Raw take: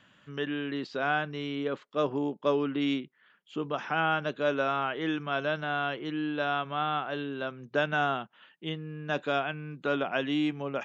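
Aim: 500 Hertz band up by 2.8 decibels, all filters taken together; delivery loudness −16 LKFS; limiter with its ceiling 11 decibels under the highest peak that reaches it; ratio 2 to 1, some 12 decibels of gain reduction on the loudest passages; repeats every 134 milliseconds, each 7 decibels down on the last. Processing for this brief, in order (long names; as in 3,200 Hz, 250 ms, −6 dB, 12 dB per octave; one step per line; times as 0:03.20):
parametric band 500 Hz +3.5 dB
downward compressor 2 to 1, threshold −43 dBFS
brickwall limiter −34.5 dBFS
repeating echo 134 ms, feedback 45%, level −7 dB
level +27.5 dB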